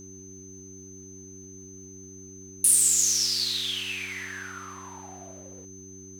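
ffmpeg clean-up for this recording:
-af "bandreject=f=95.2:t=h:w=4,bandreject=f=190.4:t=h:w=4,bandreject=f=285.6:t=h:w=4,bandreject=f=380.8:t=h:w=4,bandreject=f=6.2k:w=30,agate=range=-21dB:threshold=-37dB"

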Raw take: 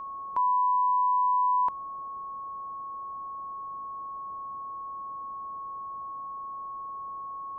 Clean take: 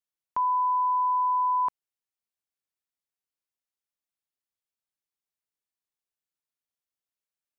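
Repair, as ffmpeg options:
-af "bandreject=f=1.1k:w=30,afwtdn=0.005"

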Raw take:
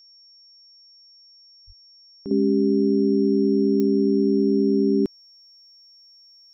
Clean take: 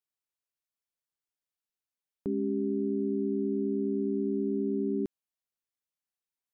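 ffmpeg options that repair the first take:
-filter_complex "[0:a]adeclick=t=4,bandreject=f=5.5k:w=30,asplit=3[a][b][c];[a]afade=t=out:st=1.66:d=0.02[d];[b]highpass=f=140:w=0.5412,highpass=f=140:w=1.3066,afade=t=in:st=1.66:d=0.02,afade=t=out:st=1.78:d=0.02[e];[c]afade=t=in:st=1.78:d=0.02[f];[d][e][f]amix=inputs=3:normalize=0,asetnsamples=n=441:p=0,asendcmd='2.31 volume volume -10.5dB',volume=0dB"

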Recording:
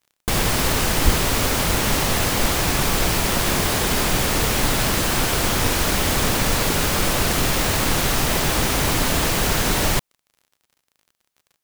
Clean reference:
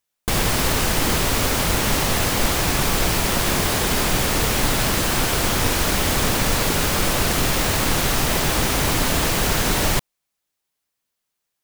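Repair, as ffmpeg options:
-filter_complex "[0:a]adeclick=t=4,asplit=3[a][b][c];[a]afade=t=out:st=1.04:d=0.02[d];[b]highpass=f=140:w=0.5412,highpass=f=140:w=1.3066,afade=t=in:st=1.04:d=0.02,afade=t=out:st=1.16:d=0.02[e];[c]afade=t=in:st=1.16:d=0.02[f];[d][e][f]amix=inputs=3:normalize=0"

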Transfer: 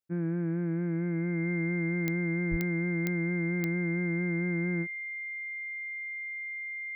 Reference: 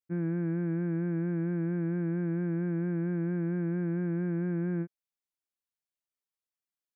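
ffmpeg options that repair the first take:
-filter_complex "[0:a]adeclick=t=4,bandreject=f=2.1k:w=30,asplit=3[a][b][c];[a]afade=t=out:st=2.5:d=0.02[d];[b]highpass=f=140:w=0.5412,highpass=f=140:w=1.3066,afade=t=in:st=2.5:d=0.02,afade=t=out:st=2.62:d=0.02[e];[c]afade=t=in:st=2.62:d=0.02[f];[d][e][f]amix=inputs=3:normalize=0"

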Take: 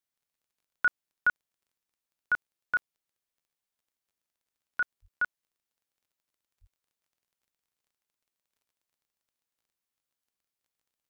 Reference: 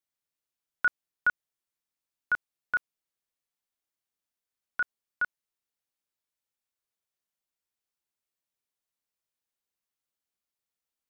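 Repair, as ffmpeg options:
-filter_complex "[0:a]adeclick=t=4,asplit=3[a][b][c];[a]afade=t=out:st=5.01:d=0.02[d];[b]highpass=f=140:w=0.5412,highpass=f=140:w=1.3066,afade=t=in:st=5.01:d=0.02,afade=t=out:st=5.13:d=0.02[e];[c]afade=t=in:st=5.13:d=0.02[f];[d][e][f]amix=inputs=3:normalize=0,asplit=3[g][h][i];[g]afade=t=out:st=6.6:d=0.02[j];[h]highpass=f=140:w=0.5412,highpass=f=140:w=1.3066,afade=t=in:st=6.6:d=0.02,afade=t=out:st=6.72:d=0.02[k];[i]afade=t=in:st=6.72:d=0.02[l];[j][k][l]amix=inputs=3:normalize=0"

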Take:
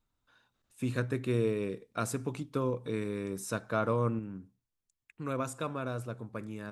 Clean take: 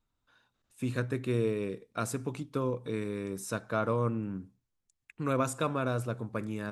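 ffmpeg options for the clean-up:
-af "asetnsamples=n=441:p=0,asendcmd='4.19 volume volume 5dB',volume=0dB"

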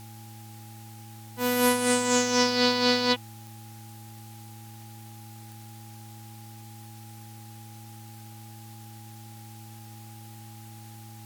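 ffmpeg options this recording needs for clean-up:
-af "adeclick=t=4,bandreject=f=110:t=h:w=4,bandreject=f=220:t=h:w=4,bandreject=f=330:t=h:w=4,bandreject=f=820:w=30,afftdn=nr=27:nf=-45"

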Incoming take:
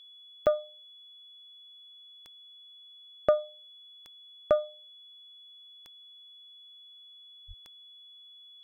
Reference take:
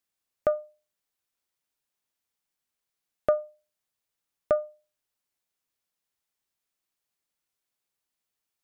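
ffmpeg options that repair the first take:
-filter_complex "[0:a]adeclick=t=4,bandreject=f=3.4k:w=30,asplit=3[a][b][c];[a]afade=t=out:st=7.47:d=0.02[d];[b]highpass=f=140:w=0.5412,highpass=f=140:w=1.3066,afade=t=in:st=7.47:d=0.02,afade=t=out:st=7.59:d=0.02[e];[c]afade=t=in:st=7.59:d=0.02[f];[d][e][f]amix=inputs=3:normalize=0,afftdn=nr=30:nf=-53"

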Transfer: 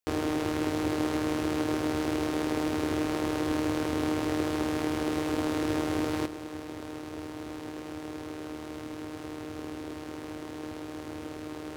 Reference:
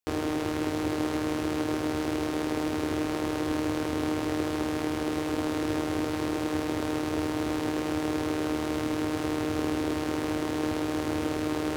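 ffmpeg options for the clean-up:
-af "asetnsamples=n=441:p=0,asendcmd='6.26 volume volume 10dB',volume=0dB"

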